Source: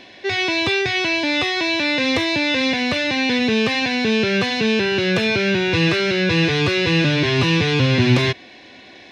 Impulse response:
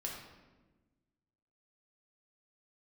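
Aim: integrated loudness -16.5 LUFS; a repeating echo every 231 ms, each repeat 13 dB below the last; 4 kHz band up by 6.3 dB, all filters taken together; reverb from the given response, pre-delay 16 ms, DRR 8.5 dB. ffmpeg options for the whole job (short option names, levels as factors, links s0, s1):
-filter_complex "[0:a]equalizer=f=4000:t=o:g=7.5,aecho=1:1:231|462|693:0.224|0.0493|0.0108,asplit=2[s0][s1];[1:a]atrim=start_sample=2205,adelay=16[s2];[s1][s2]afir=irnorm=-1:irlink=0,volume=0.376[s3];[s0][s3]amix=inputs=2:normalize=0,volume=0.794"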